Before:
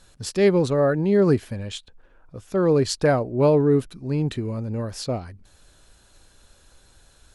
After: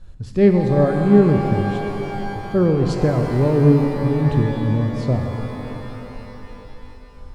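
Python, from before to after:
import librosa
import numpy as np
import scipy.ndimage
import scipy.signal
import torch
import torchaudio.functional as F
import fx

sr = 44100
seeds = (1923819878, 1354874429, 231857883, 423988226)

y = fx.tremolo_shape(x, sr, shape='triangle', hz=2.8, depth_pct=65)
y = fx.riaa(y, sr, side='playback')
y = fx.rev_shimmer(y, sr, seeds[0], rt60_s=3.8, semitones=12, shimmer_db=-8, drr_db=3.5)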